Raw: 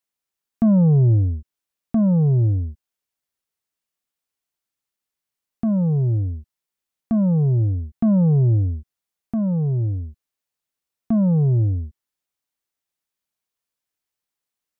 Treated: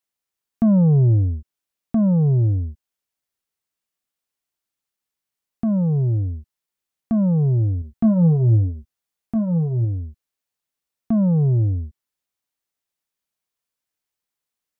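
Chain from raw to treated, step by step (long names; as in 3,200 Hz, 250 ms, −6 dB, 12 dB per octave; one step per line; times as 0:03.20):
0:07.80–0:09.85: double-tracking delay 18 ms −9 dB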